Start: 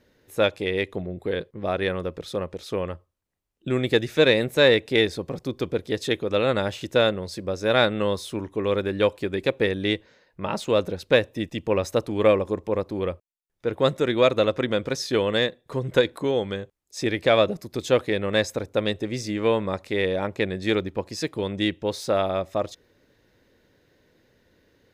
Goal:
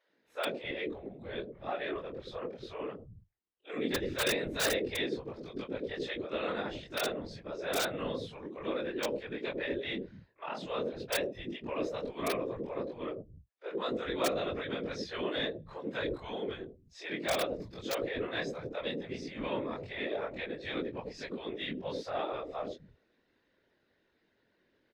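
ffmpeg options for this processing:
-filter_complex "[0:a]afftfilt=real='re':imag='-im':win_size=2048:overlap=0.75,acrossover=split=160 5000:gain=0.224 1 0.0708[s0][s1][s2];[s0][s1][s2]amix=inputs=3:normalize=0,asplit=2[s3][s4];[s4]alimiter=limit=0.106:level=0:latency=1:release=21,volume=0.841[s5];[s3][s5]amix=inputs=2:normalize=0,aeval=exprs='(mod(2.99*val(0)+1,2)-1)/2.99':c=same,afftfilt=real='hypot(re,im)*cos(2*PI*random(0))':imag='hypot(re,im)*sin(2*PI*random(1))':win_size=512:overlap=0.75,acrossover=split=150|510[s6][s7][s8];[s7]adelay=90[s9];[s6]adelay=260[s10];[s10][s9][s8]amix=inputs=3:normalize=0,volume=0.668"

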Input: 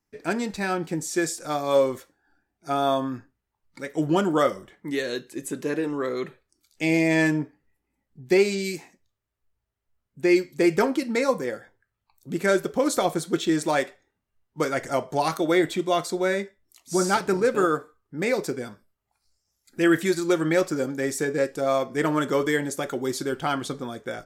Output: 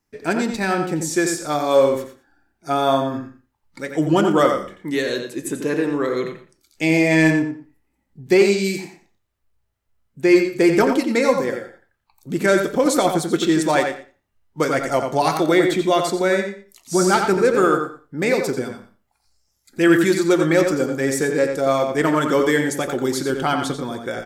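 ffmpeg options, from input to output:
-filter_complex "[0:a]asplit=2[s0][s1];[s1]adelay=88,lowpass=f=4700:p=1,volume=0.501,asplit=2[s2][s3];[s3]adelay=88,lowpass=f=4700:p=1,volume=0.17,asplit=2[s4][s5];[s5]adelay=88,lowpass=f=4700:p=1,volume=0.17[s6];[s2][s4][s6]amix=inputs=3:normalize=0[s7];[s0][s7]amix=inputs=2:normalize=0,acontrast=25,asplit=2[s8][s9];[s9]aecho=0:1:118:0.15[s10];[s8][s10]amix=inputs=2:normalize=0"

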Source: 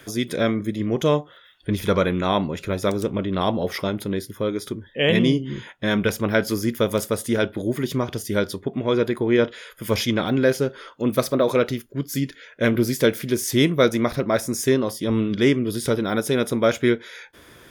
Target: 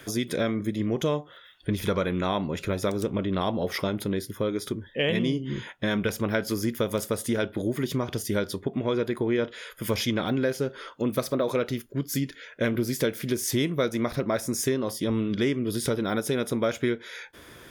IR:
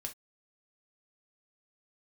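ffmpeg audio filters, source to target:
-af "acompressor=threshold=0.0631:ratio=3"

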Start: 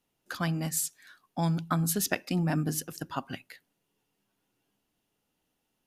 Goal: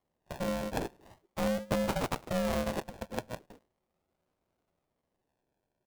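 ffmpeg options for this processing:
-filter_complex "[0:a]asplit=2[s0][s1];[s1]adelay=105,volume=0.0501,highshelf=f=4000:g=-2.36[s2];[s0][s2]amix=inputs=2:normalize=0,acrusher=samples=41:mix=1:aa=0.000001:lfo=1:lforange=24.6:lforate=0.4,aeval=exprs='val(0)*sin(2*PI*370*n/s)':c=same"

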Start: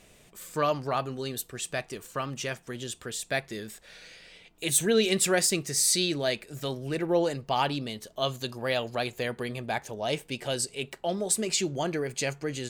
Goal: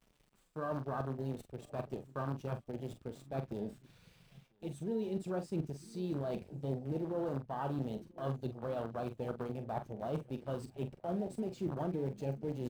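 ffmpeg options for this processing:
-filter_complex "[0:a]lowpass=9100,equalizer=f=1900:w=4.7:g=-10.5,acrusher=bits=6:dc=4:mix=0:aa=0.000001,areverse,acompressor=threshold=0.01:ratio=10,areverse,bass=f=250:g=10,treble=f=4000:g=-6,asplit=2[s0][s1];[s1]adelay=991,lowpass=f=1400:p=1,volume=0.141,asplit=2[s2][s3];[s3]adelay=991,lowpass=f=1400:p=1,volume=0.31,asplit=2[s4][s5];[s5]adelay=991,lowpass=f=1400:p=1,volume=0.31[s6];[s2][s4][s6]amix=inputs=3:normalize=0[s7];[s0][s7]amix=inputs=2:normalize=0,afwtdn=0.00631,highpass=f=170:p=1,bandreject=f=6900:w=24,asplit=2[s8][s9];[s9]adelay=44,volume=0.335[s10];[s8][s10]amix=inputs=2:normalize=0,volume=1.78"

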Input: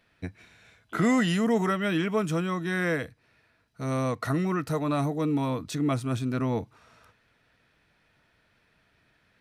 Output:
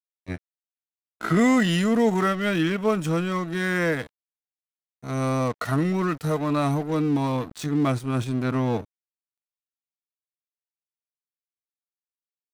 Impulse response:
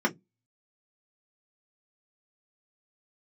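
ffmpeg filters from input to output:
-af "aeval=exprs='sgn(val(0))*max(abs(val(0))-0.00841,0)':c=same,atempo=0.75,volume=1.68"

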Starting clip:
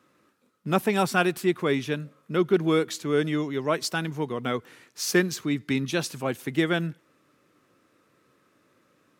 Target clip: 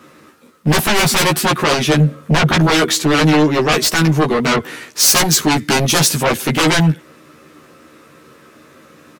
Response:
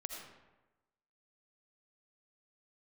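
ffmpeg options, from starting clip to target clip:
-filter_complex "[0:a]asettb=1/sr,asplit=3[s0][s1][s2];[s0]atrim=end=1.994[s3];[s1]atrim=start=1.99:end=2.55,asetpts=PTS-STARTPTS,afade=t=in:d=0.004:c=qsin,afade=t=out:st=0.556:d=0.004:c=qsin,lowshelf=f=200:g=10[s4];[s2]atrim=start=2.546[s5];[s3][s4]acrossfade=d=0.004:c1=hsin:c2=qsin[s6];[s6][s5]acrossfade=d=0.004:c1=qsin:c2=hsin,aeval=exprs='0.447*sin(PI/2*8.91*val(0)/0.447)':c=same,asplit=2[s7][s8];[s8]adelay=13,volume=0.794[s9];[s7][s9]amix=inputs=2:normalize=0,asettb=1/sr,asplit=3[s10][s11][s12];[s10]atrim=end=4.564[s13];[s11]atrim=start=4.56:end=6.25,asetpts=PTS-STARTPTS,afade=t=in:d=0.004:c=qsin,afade=t=out:st=1.686:d=0.004:c=qsin,adynamicequalizer=threshold=0.0891:dfrequency=5200:dqfactor=0.7:tfrequency=5200:tqfactor=0.7:attack=5:release=100:ratio=0.375:range=2.5:mode=boostabove:tftype=highshelf[s14];[s12]atrim=start=6.246[s15];[s13][s14]acrossfade=d=0.004:c1=hsin:c2=qsin[s16];[s16][s15]acrossfade=d=0.004:c1=qsin:c2=hsin,volume=0.562"

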